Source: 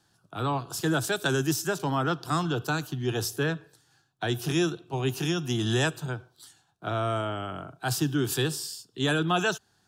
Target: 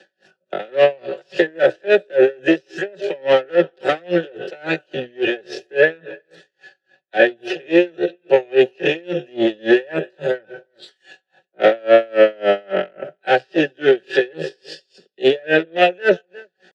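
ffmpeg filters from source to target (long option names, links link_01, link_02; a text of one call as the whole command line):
ffmpeg -i in.wav -filter_complex "[0:a]acrossover=split=4200[link_01][link_02];[link_02]acompressor=threshold=-49dB:ratio=4:attack=1:release=60[link_03];[link_01][link_03]amix=inputs=2:normalize=0,aecho=1:1:5.3:0.73,acrossover=split=230|1500[link_04][link_05][link_06];[link_04]acompressor=threshold=-35dB:ratio=4[link_07];[link_05]acompressor=threshold=-26dB:ratio=4[link_08];[link_06]acompressor=threshold=-40dB:ratio=4[link_09];[link_07][link_08][link_09]amix=inputs=3:normalize=0,highpass=180,lowpass=6700,atempo=0.59,asoftclip=type=tanh:threshold=-23.5dB,aeval=exprs='0.0668*(cos(1*acos(clip(val(0)/0.0668,-1,1)))-cos(1*PI/2))+0.00841*(cos(4*acos(clip(val(0)/0.0668,-1,1)))-cos(4*PI/2))':channel_layout=same,asplit=3[link_10][link_11][link_12];[link_10]bandpass=frequency=530:width_type=q:width=8,volume=0dB[link_13];[link_11]bandpass=frequency=1840:width_type=q:width=8,volume=-6dB[link_14];[link_12]bandpass=frequency=2480:width_type=q:width=8,volume=-9dB[link_15];[link_13][link_14][link_15]amix=inputs=3:normalize=0,asplit=2[link_16][link_17];[link_17]adelay=355.7,volume=-26dB,highshelf=frequency=4000:gain=-8[link_18];[link_16][link_18]amix=inputs=2:normalize=0,alimiter=level_in=34.5dB:limit=-1dB:release=50:level=0:latency=1,aeval=exprs='val(0)*pow(10,-33*(0.5-0.5*cos(2*PI*3.6*n/s))/20)':channel_layout=same" out.wav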